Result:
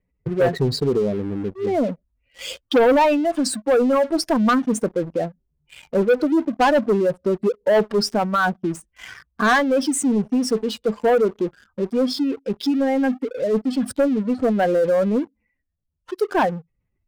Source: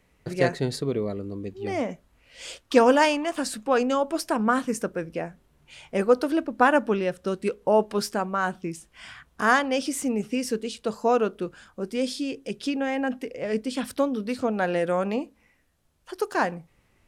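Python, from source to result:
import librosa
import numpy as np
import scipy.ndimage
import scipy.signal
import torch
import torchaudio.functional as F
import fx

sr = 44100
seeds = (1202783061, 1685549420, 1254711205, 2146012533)

y = fx.spec_expand(x, sr, power=2.0)
y = fx.leveller(y, sr, passes=3)
y = y * librosa.db_to_amplitude(-3.0)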